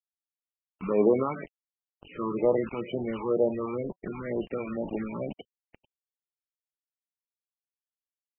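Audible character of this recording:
a quantiser's noise floor 6 bits, dither none
phaser sweep stages 12, 2.1 Hz, lowest notch 550–1,800 Hz
MP3

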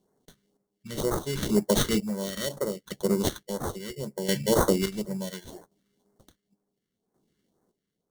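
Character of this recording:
aliases and images of a low sample rate 2,500 Hz, jitter 0%
phaser sweep stages 2, 2 Hz, lowest notch 730–2,800 Hz
chopped level 0.7 Hz, depth 65%, duty 40%

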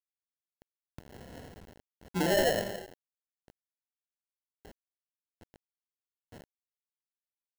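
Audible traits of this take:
aliases and images of a low sample rate 1,200 Hz, jitter 0%
sample-and-hold tremolo 3.5 Hz, depth 55%
a quantiser's noise floor 8 bits, dither none

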